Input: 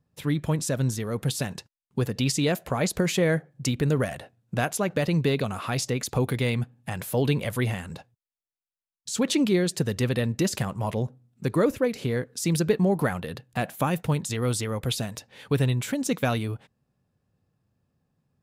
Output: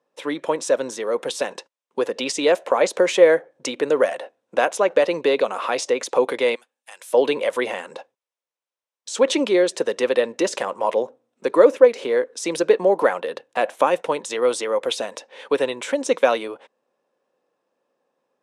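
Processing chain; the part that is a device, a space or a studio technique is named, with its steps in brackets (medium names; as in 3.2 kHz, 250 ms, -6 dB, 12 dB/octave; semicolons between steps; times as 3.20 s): 6.55–7.13 s: differentiator; phone speaker on a table (cabinet simulation 330–8400 Hz, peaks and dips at 530 Hz +9 dB, 980 Hz +6 dB, 4.6 kHz -6 dB, 7.2 kHz -5 dB); trim +5.5 dB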